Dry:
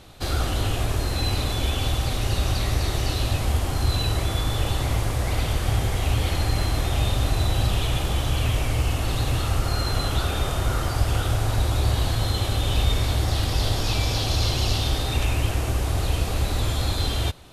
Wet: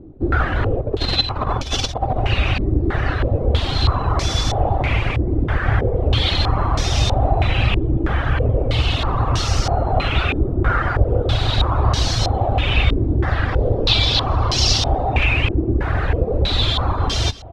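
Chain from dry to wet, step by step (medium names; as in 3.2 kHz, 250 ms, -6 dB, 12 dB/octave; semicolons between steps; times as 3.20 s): reverb removal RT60 0.65 s; 0.81–2.20 s: compressor with a negative ratio -28 dBFS, ratio -0.5; delay 248 ms -18 dB; step-sequenced low-pass 3.1 Hz 330–5600 Hz; trim +6 dB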